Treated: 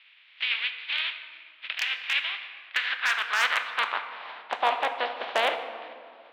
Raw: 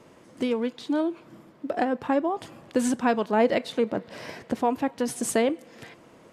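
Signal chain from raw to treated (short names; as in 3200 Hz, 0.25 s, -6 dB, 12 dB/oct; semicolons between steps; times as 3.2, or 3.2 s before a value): spectral contrast lowered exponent 0.31; steep low-pass 3700 Hz 48 dB/oct; wavefolder -13.5 dBFS; high-pass sweep 2400 Hz -> 660 Hz, 2.21–4.92; reverb RT60 2.1 s, pre-delay 5 ms, DRR 7 dB; gain -2.5 dB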